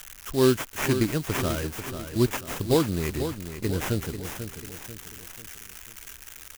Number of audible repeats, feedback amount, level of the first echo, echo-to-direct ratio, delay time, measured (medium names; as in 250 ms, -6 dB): 4, 45%, -9.5 dB, -8.5 dB, 491 ms